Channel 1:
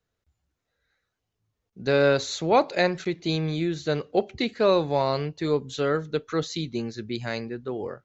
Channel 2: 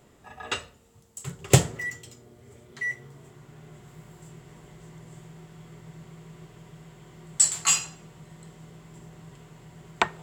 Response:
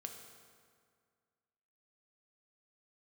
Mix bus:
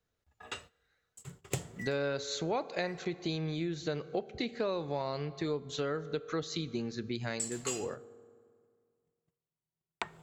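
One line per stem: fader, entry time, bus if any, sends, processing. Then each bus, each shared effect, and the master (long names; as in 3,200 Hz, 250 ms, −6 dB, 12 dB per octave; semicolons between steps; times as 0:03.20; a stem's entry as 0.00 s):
−4.0 dB, 0.00 s, send −8 dB, no processing
−11.5 dB, 0.00 s, send −21.5 dB, noise gate −41 dBFS, range −37 dB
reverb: on, RT60 2.0 s, pre-delay 3 ms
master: downward compressor 4 to 1, threshold −32 dBFS, peak gain reduction 13 dB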